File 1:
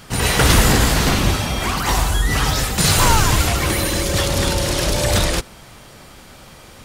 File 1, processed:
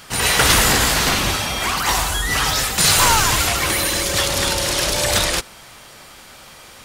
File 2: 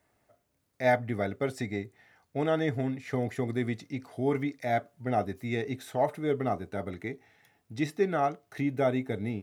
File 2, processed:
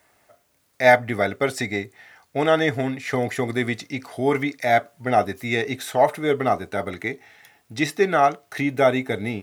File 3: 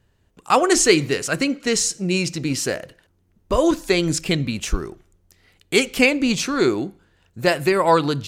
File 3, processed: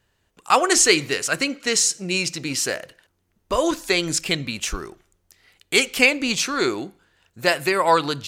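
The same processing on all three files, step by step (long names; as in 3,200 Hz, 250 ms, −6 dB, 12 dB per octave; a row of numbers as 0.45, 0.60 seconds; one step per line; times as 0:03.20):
low-shelf EQ 490 Hz −11 dB
normalise the peak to −1.5 dBFS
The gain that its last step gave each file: +3.0, +13.5, +2.5 decibels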